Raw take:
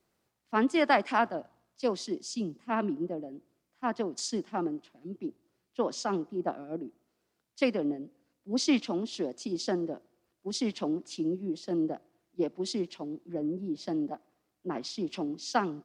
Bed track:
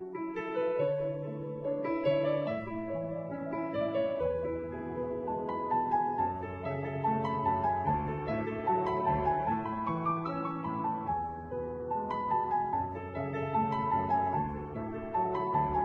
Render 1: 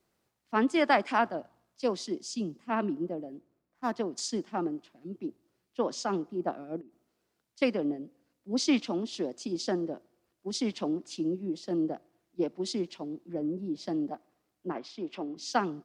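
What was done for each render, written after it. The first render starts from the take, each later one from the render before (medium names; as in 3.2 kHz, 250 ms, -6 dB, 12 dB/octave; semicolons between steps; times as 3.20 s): 3.33–3.93 s: median filter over 15 samples; 6.81–7.62 s: compression 16:1, threshold -49 dBFS; 14.72–15.37 s: tone controls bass -10 dB, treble -14 dB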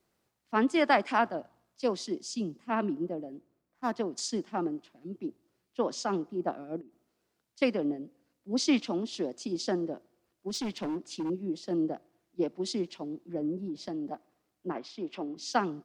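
10.49–11.30 s: overload inside the chain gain 30 dB; 13.65–14.07 s: compression, threshold -32 dBFS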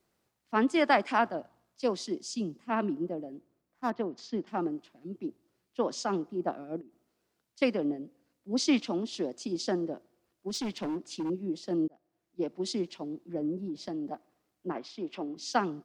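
3.90–4.47 s: distance through air 260 m; 11.88–12.60 s: fade in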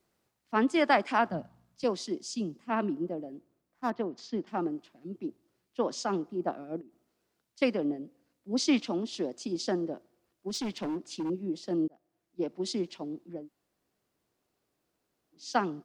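1.30–1.84 s: resonant low shelf 250 Hz +10 dB, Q 1.5; 13.37–15.44 s: room tone, crossfade 0.24 s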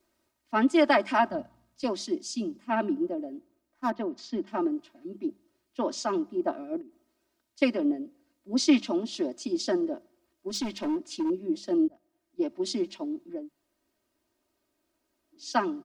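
hum notches 50/100/150/200 Hz; comb 3.2 ms, depth 86%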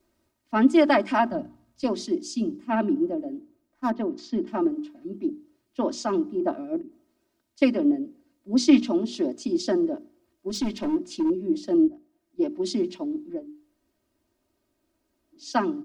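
bass shelf 330 Hz +10 dB; hum notches 60/120/180/240/300/360/420 Hz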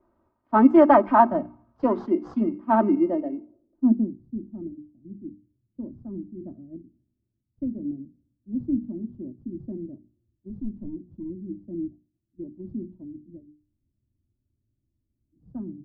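in parallel at -10 dB: sample-and-hold 18×; on the sum: low-pass sweep 1.1 kHz -> 130 Hz, 3.30–4.19 s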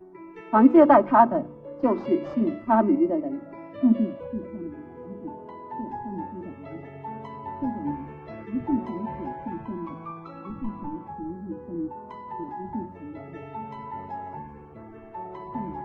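add bed track -6.5 dB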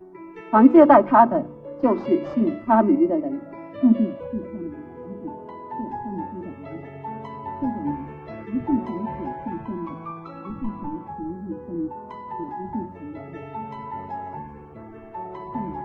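trim +3 dB; peak limiter -1 dBFS, peak gain reduction 1 dB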